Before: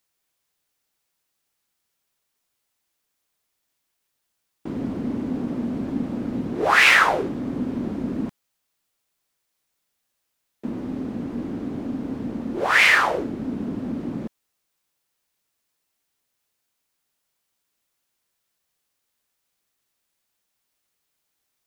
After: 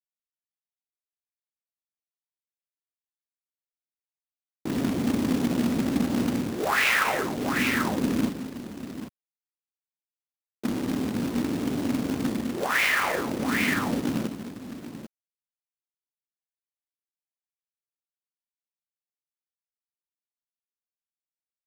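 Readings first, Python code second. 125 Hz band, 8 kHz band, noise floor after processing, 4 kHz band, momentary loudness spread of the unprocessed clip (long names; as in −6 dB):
+1.0 dB, +1.0 dB, below −85 dBFS, −5.0 dB, 18 LU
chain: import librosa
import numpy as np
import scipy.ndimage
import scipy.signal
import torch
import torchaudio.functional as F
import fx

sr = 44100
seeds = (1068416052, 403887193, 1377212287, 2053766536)

y = scipy.signal.sosfilt(scipy.signal.butter(4, 57.0, 'highpass', fs=sr, output='sos'), x)
y = fx.echo_multitap(y, sr, ms=(41, 82, 92, 201, 791), db=(-19.0, -18.0, -19.0, -12.5, -11.5))
y = fx.rider(y, sr, range_db=5, speed_s=0.5)
y = fx.quant_companded(y, sr, bits=4)
y = y * 10.0 ** (-4.0 / 20.0)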